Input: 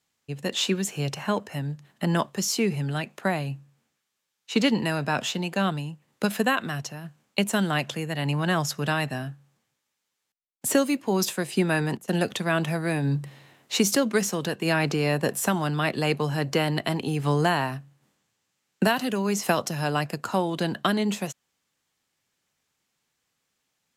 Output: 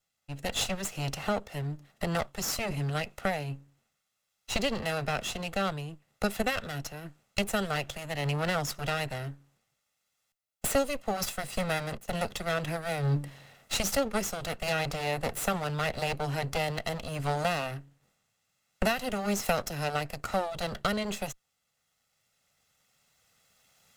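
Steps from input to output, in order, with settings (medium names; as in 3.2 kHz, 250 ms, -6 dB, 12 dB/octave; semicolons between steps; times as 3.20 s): comb filter that takes the minimum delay 1.5 ms; recorder AGC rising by 6.1 dB/s; trim -4.5 dB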